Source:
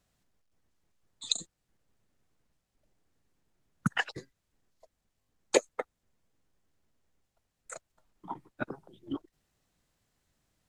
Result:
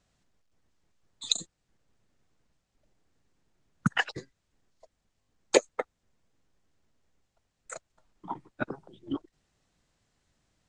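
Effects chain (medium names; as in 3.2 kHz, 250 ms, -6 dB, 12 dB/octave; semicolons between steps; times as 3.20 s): low-pass 8.4 kHz 24 dB/octave; trim +3 dB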